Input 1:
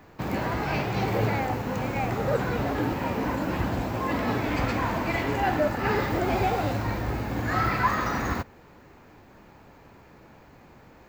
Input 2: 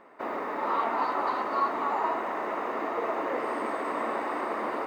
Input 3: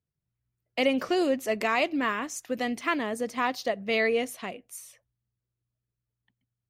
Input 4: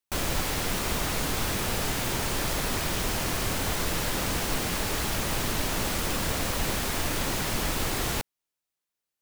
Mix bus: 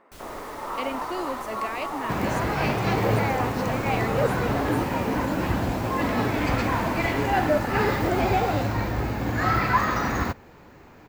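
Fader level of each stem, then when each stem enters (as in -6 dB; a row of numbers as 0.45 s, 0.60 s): +2.5 dB, -4.0 dB, -7.5 dB, -17.0 dB; 1.90 s, 0.00 s, 0.00 s, 0.00 s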